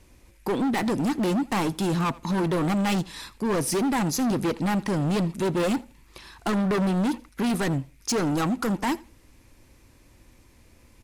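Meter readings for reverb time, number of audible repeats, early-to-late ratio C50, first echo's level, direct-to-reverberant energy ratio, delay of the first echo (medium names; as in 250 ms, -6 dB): no reverb, 1, no reverb, -22.5 dB, no reverb, 83 ms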